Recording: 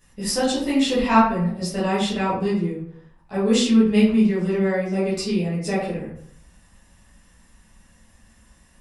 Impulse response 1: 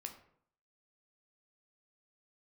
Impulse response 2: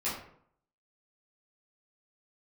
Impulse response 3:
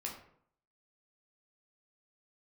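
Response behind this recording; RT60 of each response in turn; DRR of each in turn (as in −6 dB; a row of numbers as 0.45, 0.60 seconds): 2; 0.65, 0.65, 0.65 seconds; 4.0, −11.0, −1.5 decibels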